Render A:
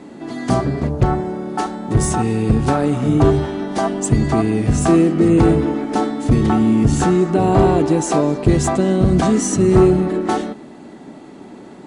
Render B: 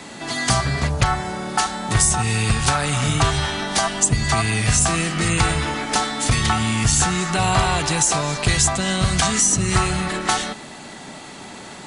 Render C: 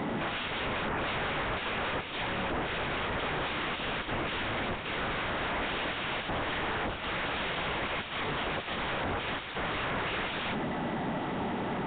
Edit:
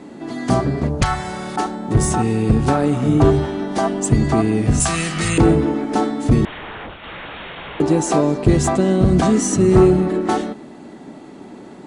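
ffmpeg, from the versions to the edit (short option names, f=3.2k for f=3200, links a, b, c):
-filter_complex "[1:a]asplit=2[a][b];[0:a]asplit=4[c][d][e][f];[c]atrim=end=1.022[g];[a]atrim=start=1.018:end=1.562[h];[d]atrim=start=1.558:end=4.802[i];[b]atrim=start=4.798:end=5.382[j];[e]atrim=start=5.378:end=6.452[k];[2:a]atrim=start=6.448:end=7.802[l];[f]atrim=start=7.798[m];[g][h]acrossfade=d=0.004:c1=hsin:c2=hsin[n];[n][i]acrossfade=d=0.004:c1=hsin:c2=hsin[o];[o][j]acrossfade=d=0.004:c1=hsin:c2=hsin[p];[p][k]acrossfade=d=0.004:c1=hsin:c2=hsin[q];[q][l]acrossfade=d=0.004:c1=hsin:c2=hsin[r];[r][m]acrossfade=d=0.004:c1=hsin:c2=hsin"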